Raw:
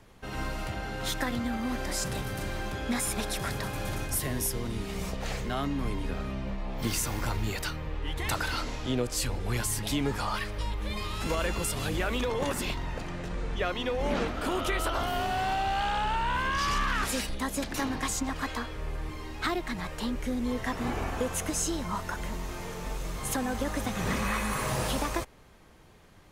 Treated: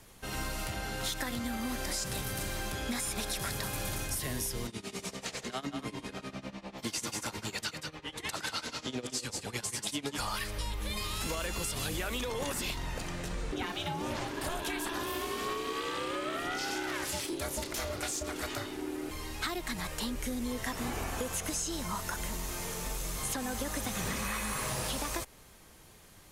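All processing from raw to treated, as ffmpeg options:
-filter_complex "[0:a]asettb=1/sr,asplit=3[a][b][c];[a]atrim=end=4.674[d];[b]atrim=start=4.67:end=10.18,asetpts=PTS-STARTPTS,afade=t=in:d=0.004:c=qsin,afade=t=out:st=5.506:d=0.004:c=qsin,tremolo=f=10:d=0.92,highpass=150,lowpass=7.8k,aecho=1:1:187:0.422,atrim=end_sample=242991[e];[c]atrim=start=10.176[f];[d][e]acrossfade=d=0.004:c1=hsin:c2=qsin[g];[g][f]acrossfade=d=0.004:c1=qsin:c2=hsin,asettb=1/sr,asplit=3[h][i][j];[h]atrim=end=13.524[k];[i]atrim=start=13.52:end=19.11,asetpts=PTS-STARTPTS,afade=t=in:d=0.004:c=qsin,afade=t=out:st=5.586:d=0.004:c=qsin,aphaser=in_gain=1:out_gain=1:delay=4.5:decay=0.28:speed=1:type=sinusoidal,aeval=exprs='val(0)*sin(2*PI*340*n/s)':c=same,asplit=2[l][m];[m]adelay=30,volume=-13dB[n];[l][n]amix=inputs=2:normalize=0,atrim=end_sample=246519[o];[j]atrim=start=19.106[p];[k][o]acrossfade=d=0.004:c1=hsin:c2=qsin[q];[q][p]acrossfade=d=0.004:c1=qsin:c2=hsin,acrossover=split=5800[r][s];[s]acompressor=threshold=-45dB:ratio=4:attack=1:release=60[t];[r][t]amix=inputs=2:normalize=0,equalizer=f=12k:t=o:w=2.1:g=14.5,acompressor=threshold=-29dB:ratio=6,volume=-2dB"

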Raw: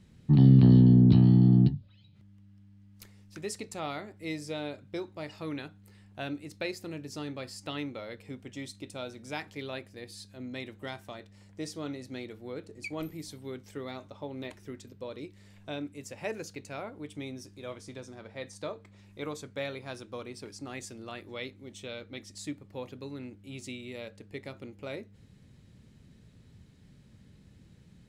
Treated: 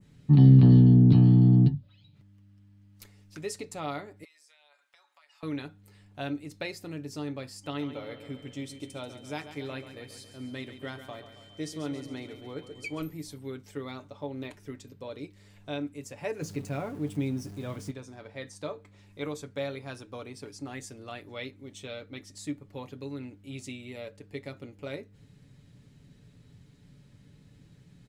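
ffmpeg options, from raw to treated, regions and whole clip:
-filter_complex "[0:a]asettb=1/sr,asplit=3[a][b][c];[a]atrim=end=4.244[d];[b]atrim=start=4.24:end=5.43,asetpts=PTS-STARTPTS,afade=t=in:d=0.004:c=qsin,afade=t=out:st=1.186:d=0.004:c=qsin,highpass=f=910:w=0.5412,highpass=f=910:w=1.3066,aecho=1:1:7.1:0.41,atrim=end_sample=52479,acompressor=threshold=-60dB:ratio=5:attack=3.2:release=140:knee=1:detection=peak[e];[c]atrim=start=5.426[f];[d][e]acrossfade=d=0.004:c1=hsin:c2=qsin[g];[g][f]acrossfade=d=0.004:c1=qsin:c2=hsin,asettb=1/sr,asplit=3[h][i][j];[h]atrim=end=7.644[k];[i]atrim=start=7.64:end=13,asetpts=PTS-STARTPTS,afade=t=in:d=0.004:c=qsin,afade=t=out:st=5.356:d=0.004:c=qsin,aeval=exprs='val(0)+0.00316*sin(2*PI*3100*n/s)':c=same,aecho=1:1:137|274|411|548|685|822|959:0.282|0.166|0.0981|0.0579|0.0342|0.0201|0.0119,atrim=end_sample=236376[l];[j]atrim=start=12.996[m];[k][l]acrossfade=d=0.004:c1=hsin:c2=qsin[n];[n][m]acrossfade=d=0.004:c1=qsin:c2=hsin,asettb=1/sr,asplit=3[o][p][q];[o]atrim=end=16.414[r];[p]atrim=start=16.41:end=17.91,asetpts=PTS-STARTPTS,afade=t=in:d=0.004:c=qsin,afade=t=out:st=1.496:d=0.004:c=qsin,aeval=exprs='val(0)+0.5*0.00422*sgn(val(0))':c=same,equalizer=f=160:t=o:w=2:g=9[s];[q]atrim=start=17.906[t];[r][s]acrossfade=d=0.004:c1=hsin:c2=qsin[u];[u][t]acrossfade=d=0.004:c1=qsin:c2=hsin,aecho=1:1:7:0.48,adynamicequalizer=threshold=0.002:dfrequency=3900:dqfactor=0.77:tfrequency=3900:tqfactor=0.77:attack=5:release=100:ratio=0.375:range=2:mode=cutabove:tftype=bell"

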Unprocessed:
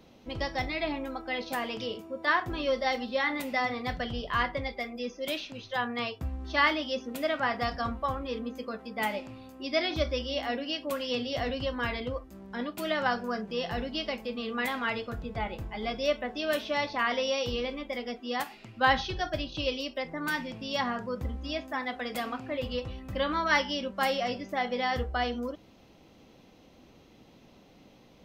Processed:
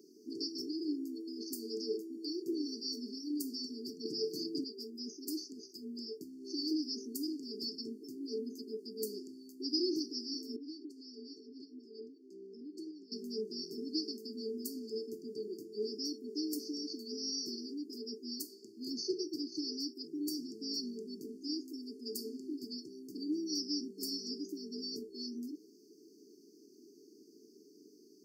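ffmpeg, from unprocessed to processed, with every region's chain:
-filter_complex "[0:a]asettb=1/sr,asplit=3[a][b][c];[a]atrim=end=4.054[d];[b]atrim=start=4.05:end=4.64,asetpts=PTS-STARTPTS,afade=t=in:d=0.004:c=qsin,afade=t=out:st=0.586:d=0.004:c=qsin,aecho=1:1:6.3:0.77,atrim=end_sample=26019,acontrast=25[e];[c]atrim=start=4.636[f];[d][e]acrossfade=d=0.004:c1=hsin:c2=qsin[g];[g][f]acrossfade=d=0.004:c1=qsin:c2=hsin,asettb=1/sr,asplit=3[h][i][j];[h]atrim=end=10.564[k];[i]atrim=start=10.56:end=13.12,asetpts=PTS-STARTPTS,afade=t=in:d=0.004:c=qsin,afade=t=out:st=2.556:d=0.004:c=qsin,acompressor=threshold=-37dB:ratio=5:attack=3.2:release=140:knee=1:detection=peak,highpass=230,lowpass=3.8k[l];[j]atrim=start=13.116[m];[k][l]acrossfade=d=0.004:c1=hsin:c2=qsin[n];[n][m]acrossfade=d=0.004:c1=qsin:c2=hsin,highpass=f=340:w=0.5412,highpass=f=340:w=1.3066,equalizer=f=11k:w=0.43:g=-4.5,afftfilt=real='re*(1-between(b*sr/4096,450,4400))':imag='im*(1-between(b*sr/4096,450,4400))':win_size=4096:overlap=0.75,volume=6dB"

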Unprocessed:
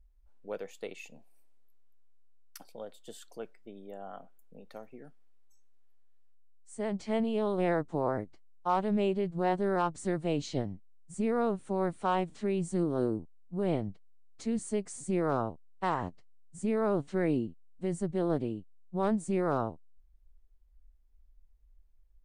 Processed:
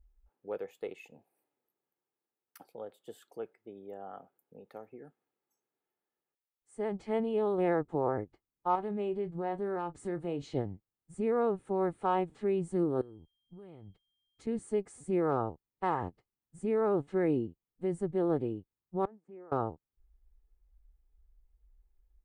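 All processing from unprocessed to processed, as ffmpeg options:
-filter_complex "[0:a]asettb=1/sr,asplit=3[a][b][c];[a]atrim=end=8.754[d];[b]atrim=start=8.75:end=10.54,asetpts=PTS-STARTPTS,afade=t=in:d=0.004:c=qsin,afade=t=out:st=1.786:d=0.004:c=qsin,acompressor=threshold=-34dB:ratio=2:attack=3.2:release=140:knee=1:detection=peak,asplit=2[e][f];[f]adelay=29,volume=-14dB[g];[e][g]amix=inputs=2:normalize=0,atrim=end_sample=78939[h];[c]atrim=start=10.536[i];[d][h]acrossfade=d=0.004:c1=hsin:c2=qsin[j];[j][i]acrossfade=d=0.004:c1=qsin:c2=hsin,asettb=1/sr,asplit=3[k][l][m];[k]atrim=end=13.014[n];[l]atrim=start=13.01:end=14.47,asetpts=PTS-STARTPTS,afade=t=in:d=0.004:c=qsin,afade=t=out:st=1.456:d=0.004:c=qsin,acompressor=threshold=-40dB:ratio=10:attack=3.2:release=140:knee=1:detection=peak,equalizer=f=530:w=0.39:g=-7.5,aeval=exprs='val(0)+0.000316*sin(2*PI*3200*n/s)':c=same[o];[m]atrim=start=14.466[p];[n][o]acrossfade=d=0.004:c1=hsin:c2=qsin[q];[q][p]acrossfade=d=0.004:c1=qsin:c2=hsin,asettb=1/sr,asplit=3[r][s][t];[r]atrim=end=19.054[u];[s]atrim=start=19.05:end=19.52,asetpts=PTS-STARTPTS,afade=t=in:d=0.004:c=qsin,afade=t=out:st=0.466:d=0.004:c=qsin,acompressor=threshold=-39dB:ratio=8:attack=3.2:release=140:knee=1:detection=peak,agate=range=-33dB:threshold=-37dB:ratio=3:release=100:detection=peak,highpass=230,lowpass=2.3k[v];[t]atrim=start=19.516[w];[u][v]acrossfade=d=0.004:c1=hsin:c2=qsin[x];[x][w]acrossfade=d=0.004:c1=qsin:c2=hsin,highpass=f=44:p=1,equalizer=f=5.9k:w=0.61:g=-13.5,aecho=1:1:2.4:0.36"

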